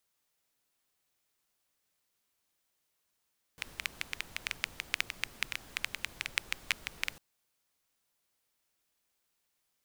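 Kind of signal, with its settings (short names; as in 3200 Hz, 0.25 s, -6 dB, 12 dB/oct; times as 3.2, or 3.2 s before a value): rain from filtered ticks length 3.60 s, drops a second 8.5, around 2300 Hz, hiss -13 dB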